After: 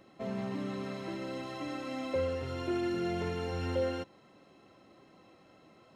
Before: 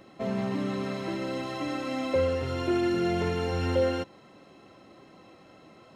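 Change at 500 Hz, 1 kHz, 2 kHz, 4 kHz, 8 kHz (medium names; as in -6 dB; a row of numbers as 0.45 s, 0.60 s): -6.5 dB, -6.5 dB, -6.5 dB, -6.5 dB, -6.5 dB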